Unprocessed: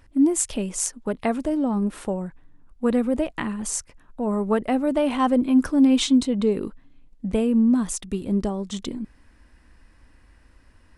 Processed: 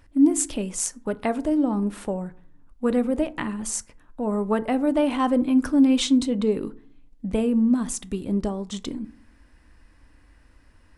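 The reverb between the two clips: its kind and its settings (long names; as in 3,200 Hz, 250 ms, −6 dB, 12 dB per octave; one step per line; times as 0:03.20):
feedback delay network reverb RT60 0.52 s, low-frequency decay 1.2×, high-frequency decay 0.45×, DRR 13.5 dB
level −1 dB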